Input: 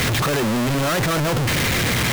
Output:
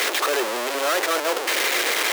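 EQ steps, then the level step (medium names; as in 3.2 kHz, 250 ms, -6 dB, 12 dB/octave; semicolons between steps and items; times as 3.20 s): steep high-pass 360 Hz 36 dB/octave; 0.0 dB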